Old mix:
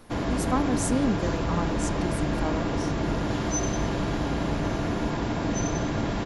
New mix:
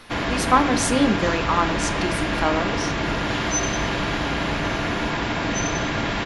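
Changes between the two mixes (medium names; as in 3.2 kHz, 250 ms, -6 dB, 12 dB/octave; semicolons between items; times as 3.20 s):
speech: send +11.5 dB; master: add peaking EQ 2.4 kHz +12.5 dB 2.6 oct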